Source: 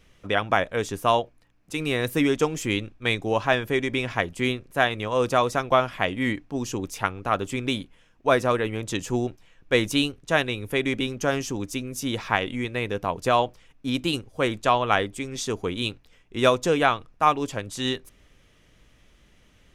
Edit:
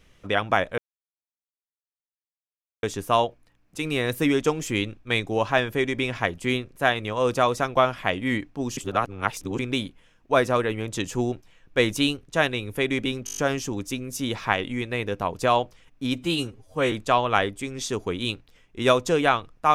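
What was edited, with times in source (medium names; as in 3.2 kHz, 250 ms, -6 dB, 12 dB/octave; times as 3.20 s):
0.78 s: insert silence 2.05 s
6.72–7.54 s: reverse
11.20 s: stutter 0.02 s, 7 plays
13.97–14.49 s: stretch 1.5×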